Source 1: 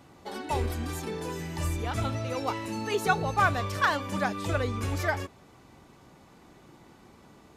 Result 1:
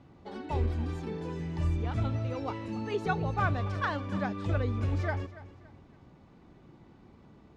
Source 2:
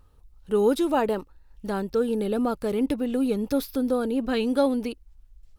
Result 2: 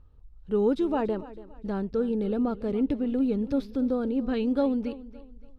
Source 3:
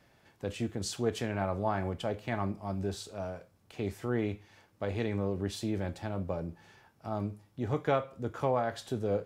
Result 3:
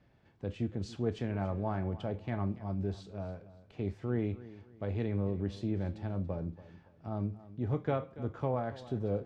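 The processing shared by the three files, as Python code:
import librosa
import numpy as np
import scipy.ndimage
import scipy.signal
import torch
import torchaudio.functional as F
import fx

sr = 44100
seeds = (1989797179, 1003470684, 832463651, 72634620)

p1 = scipy.signal.sosfilt(scipy.signal.butter(2, 4300.0, 'lowpass', fs=sr, output='sos'), x)
p2 = fx.low_shelf(p1, sr, hz=380.0, db=10.5)
p3 = p2 + fx.echo_feedback(p2, sr, ms=284, feedback_pct=34, wet_db=-17.0, dry=0)
y = F.gain(torch.from_numpy(p3), -8.0).numpy()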